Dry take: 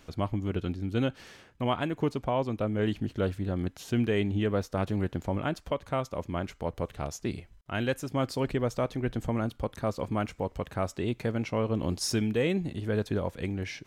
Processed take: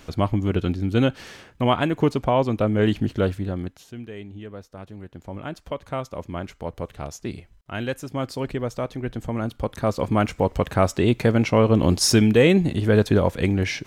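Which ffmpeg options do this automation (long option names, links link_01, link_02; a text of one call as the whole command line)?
ffmpeg -i in.wav -af "volume=30dB,afade=type=out:start_time=3.08:duration=0.62:silence=0.354813,afade=type=out:start_time=3.7:duration=0.22:silence=0.334965,afade=type=in:start_time=5.08:duration=0.76:silence=0.266073,afade=type=in:start_time=9.27:duration=1.28:silence=0.316228" out.wav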